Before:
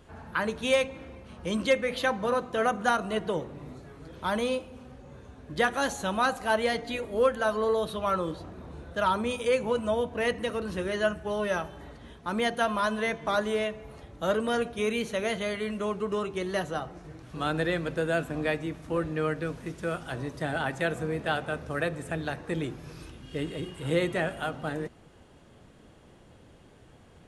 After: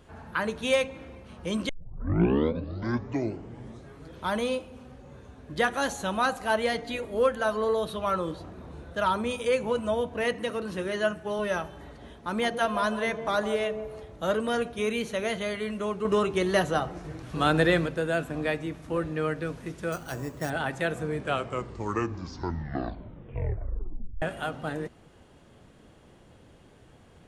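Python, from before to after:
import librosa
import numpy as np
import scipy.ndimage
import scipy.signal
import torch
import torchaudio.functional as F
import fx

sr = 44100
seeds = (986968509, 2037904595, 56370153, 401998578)

y = fx.highpass(x, sr, hz=110.0, slope=12, at=(10.24, 11.39))
y = fx.echo_wet_bandpass(y, sr, ms=157, feedback_pct=33, hz=440.0, wet_db=-6.5, at=(11.98, 14.27), fade=0.02)
y = fx.resample_bad(y, sr, factor=6, down='filtered', up='hold', at=(19.92, 20.5))
y = fx.edit(y, sr, fx.tape_start(start_s=1.69, length_s=2.26),
    fx.clip_gain(start_s=16.05, length_s=1.81, db=6.0),
    fx.tape_stop(start_s=21.0, length_s=3.22), tone=tone)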